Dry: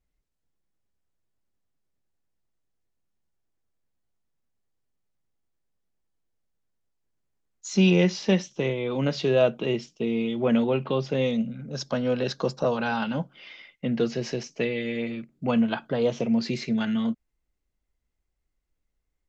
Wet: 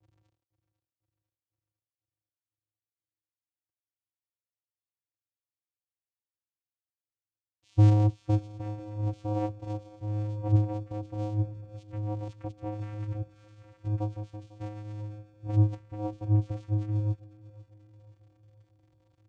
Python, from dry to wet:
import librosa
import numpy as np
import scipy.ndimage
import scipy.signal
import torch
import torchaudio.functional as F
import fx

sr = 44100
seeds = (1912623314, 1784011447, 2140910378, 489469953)

y = x + 0.5 * 10.0 ** (-34.0 / 20.0) * np.sign(x)
y = fx.env_flanger(y, sr, rest_ms=2.6, full_db=-19.5)
y = fx.vocoder(y, sr, bands=4, carrier='square', carrier_hz=105.0)
y = fx.echo_feedback(y, sr, ms=499, feedback_pct=59, wet_db=-13.5)
y = fx.upward_expand(y, sr, threshold_db=-40.0, expansion=1.5)